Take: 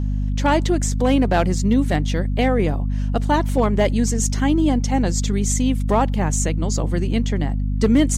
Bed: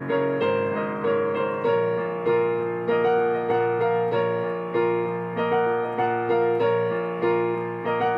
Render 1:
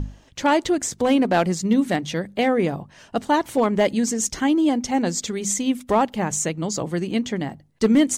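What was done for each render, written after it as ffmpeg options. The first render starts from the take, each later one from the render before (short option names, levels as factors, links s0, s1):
-af "bandreject=f=50:t=h:w=6,bandreject=f=100:t=h:w=6,bandreject=f=150:t=h:w=6,bandreject=f=200:t=h:w=6,bandreject=f=250:t=h:w=6"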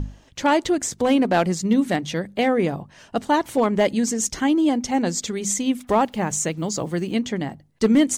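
-filter_complex "[0:a]asettb=1/sr,asplit=3[s0][s1][s2];[s0]atrim=end=5.794[s3];[s1]atrim=start=5.79:end=7.15,asetpts=PTS-STARTPTS,afade=t=in:d=0.004:c=qsin,afade=t=out:st=1.356:d=0.004:c=qsin,acrusher=bits=8:mix=0:aa=0.5[s4];[s2]atrim=start=7.146[s5];[s3][s4]acrossfade=d=0.004:c1=hsin:c2=qsin[s6];[s6][s5]acrossfade=d=0.004:c1=qsin:c2=hsin"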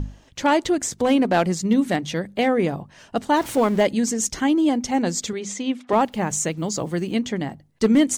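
-filter_complex "[0:a]asettb=1/sr,asplit=3[s0][s1][s2];[s0]atrim=end=3.364[s3];[s1]atrim=start=3.36:end=3.83,asetpts=PTS-STARTPTS,afade=t=in:d=0.004:c=qsin,afade=t=out:st=0.466:d=0.004:c=qsin,aeval=exprs='val(0)+0.5*0.0237*sgn(val(0))':c=same[s4];[s2]atrim=start=3.826[s5];[s3][s4]acrossfade=d=0.004:c1=hsin:c2=qsin[s6];[s6][s5]acrossfade=d=0.004:c1=qsin:c2=hsin,asettb=1/sr,asplit=3[s7][s8][s9];[s7]atrim=end=5.334[s10];[s8]atrim=start=5.33:end=5.93,asetpts=PTS-STARTPTS,afade=t=in:d=0.004:c=qsin,afade=t=out:st=0.596:d=0.004:c=qsin,highpass=250,lowpass=4600[s11];[s9]atrim=start=5.926[s12];[s10][s11]acrossfade=d=0.004:c1=hsin:c2=qsin[s13];[s13][s12]acrossfade=d=0.004:c1=qsin:c2=hsin"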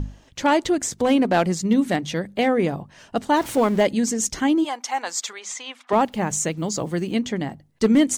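-filter_complex "[0:a]asplit=3[s0][s1][s2];[s0]afade=t=out:st=4.63:d=0.02[s3];[s1]highpass=f=980:t=q:w=1.7,afade=t=in:st=4.63:d=0.02,afade=t=out:st=5.9:d=0.02[s4];[s2]afade=t=in:st=5.9:d=0.02[s5];[s3][s4][s5]amix=inputs=3:normalize=0"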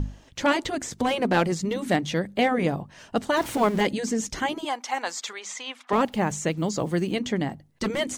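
-filter_complex "[0:a]afftfilt=real='re*lt(hypot(re,im),1)':imag='im*lt(hypot(re,im),1)':win_size=1024:overlap=0.75,acrossover=split=4100[s0][s1];[s1]acompressor=threshold=0.02:ratio=4:attack=1:release=60[s2];[s0][s2]amix=inputs=2:normalize=0"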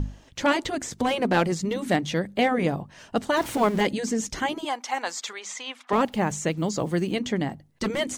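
-af anull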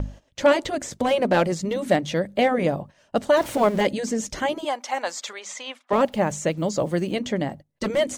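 -af "agate=range=0.224:threshold=0.01:ratio=16:detection=peak,equalizer=f=580:w=4.4:g=9.5"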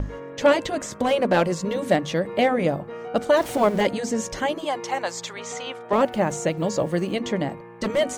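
-filter_complex "[1:a]volume=0.2[s0];[0:a][s0]amix=inputs=2:normalize=0"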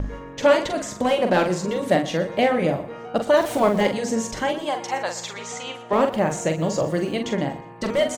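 -filter_complex "[0:a]asplit=2[s0][s1];[s1]adelay=44,volume=0.473[s2];[s0][s2]amix=inputs=2:normalize=0,aecho=1:1:120|240|360:0.15|0.0539|0.0194"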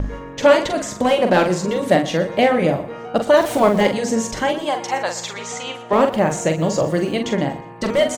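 -af "volume=1.58"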